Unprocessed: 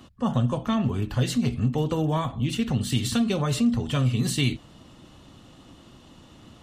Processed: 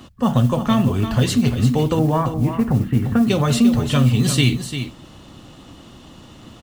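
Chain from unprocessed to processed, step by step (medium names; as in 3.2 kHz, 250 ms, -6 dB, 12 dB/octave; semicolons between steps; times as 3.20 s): 1.99–3.27 s: inverse Chebyshev low-pass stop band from 7.3 kHz, stop band 70 dB; modulation noise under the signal 30 dB; delay 347 ms -9.5 dB; trim +7 dB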